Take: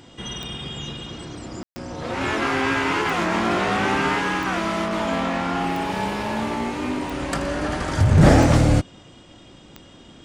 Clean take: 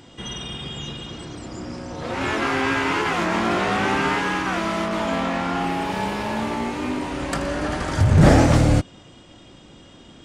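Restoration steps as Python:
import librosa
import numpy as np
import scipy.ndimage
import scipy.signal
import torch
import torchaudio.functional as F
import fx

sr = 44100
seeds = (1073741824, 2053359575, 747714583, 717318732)

y = fx.fix_declick_ar(x, sr, threshold=10.0)
y = fx.fix_ambience(y, sr, seeds[0], print_start_s=8.99, print_end_s=9.49, start_s=1.63, end_s=1.76)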